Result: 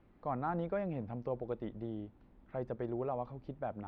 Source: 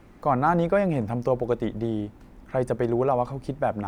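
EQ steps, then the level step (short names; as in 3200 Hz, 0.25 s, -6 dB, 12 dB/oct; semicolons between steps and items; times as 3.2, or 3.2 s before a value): ladder low-pass 4600 Hz, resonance 35%; high shelf 2100 Hz -10.5 dB; -6.0 dB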